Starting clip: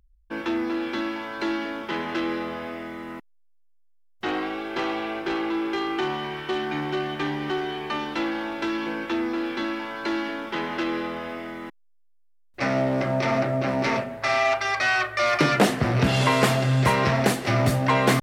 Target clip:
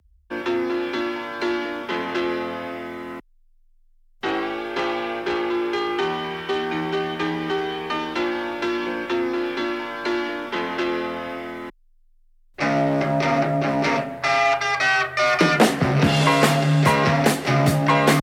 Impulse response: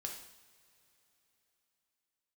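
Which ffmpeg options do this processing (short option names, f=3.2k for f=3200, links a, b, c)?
-af "afreqshift=20,volume=3dB"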